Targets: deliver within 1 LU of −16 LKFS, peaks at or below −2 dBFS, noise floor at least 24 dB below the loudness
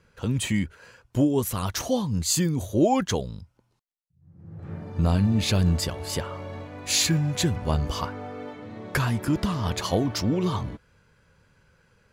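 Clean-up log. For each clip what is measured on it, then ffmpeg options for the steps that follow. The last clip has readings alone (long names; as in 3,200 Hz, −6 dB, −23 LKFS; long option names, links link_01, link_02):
integrated loudness −25.5 LKFS; sample peak −10.0 dBFS; target loudness −16.0 LKFS
→ -af "volume=9.5dB,alimiter=limit=-2dB:level=0:latency=1"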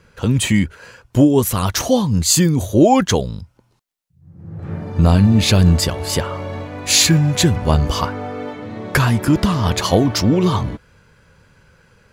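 integrated loudness −16.0 LKFS; sample peak −2.0 dBFS; background noise floor −60 dBFS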